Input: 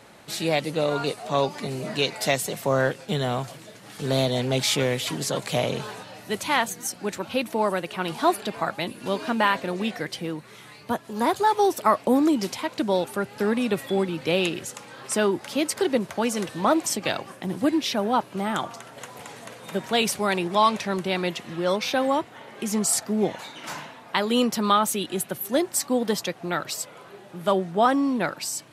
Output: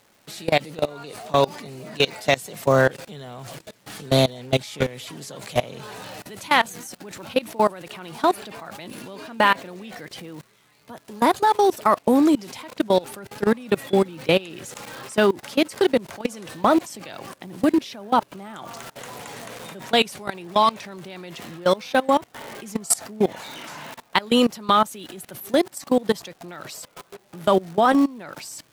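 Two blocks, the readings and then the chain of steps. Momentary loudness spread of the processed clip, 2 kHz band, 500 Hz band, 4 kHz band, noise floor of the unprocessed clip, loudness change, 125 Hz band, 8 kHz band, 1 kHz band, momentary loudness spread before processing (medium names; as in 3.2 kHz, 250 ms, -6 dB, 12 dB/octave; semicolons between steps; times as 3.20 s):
19 LU, +2.0 dB, +2.5 dB, +0.5 dB, -47 dBFS, +3.0 dB, 0.0 dB, -3.0 dB, +2.5 dB, 13 LU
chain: crackle 410 per s -34 dBFS; level held to a coarse grid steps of 22 dB; trim +6.5 dB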